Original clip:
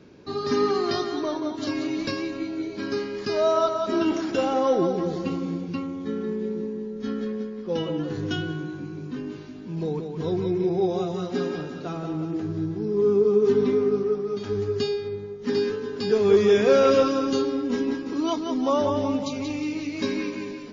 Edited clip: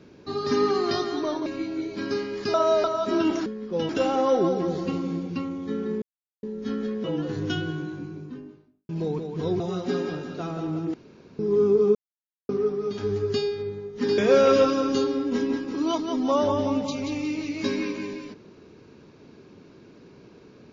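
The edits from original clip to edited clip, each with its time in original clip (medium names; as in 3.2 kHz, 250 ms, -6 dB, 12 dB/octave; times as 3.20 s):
1.46–2.27 s: delete
3.35–3.65 s: reverse
6.40–6.81 s: mute
7.42–7.85 s: move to 4.27 s
8.63–9.70 s: studio fade out
10.41–11.06 s: delete
12.40–12.85 s: room tone
13.41–13.95 s: mute
15.64–16.56 s: delete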